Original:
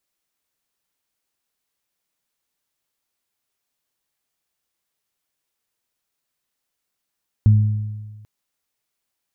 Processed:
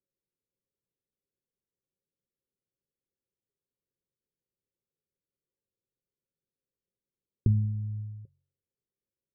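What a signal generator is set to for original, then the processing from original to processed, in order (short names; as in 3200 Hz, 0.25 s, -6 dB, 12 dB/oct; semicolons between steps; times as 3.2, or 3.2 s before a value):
additive tone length 0.79 s, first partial 106 Hz, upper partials -13 dB, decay 1.42 s, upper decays 1.11 s, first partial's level -7.5 dB
de-hum 45.6 Hz, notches 3; dynamic EQ 100 Hz, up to -8 dB, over -28 dBFS, Q 0.7; rippled Chebyshev low-pass 560 Hz, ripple 6 dB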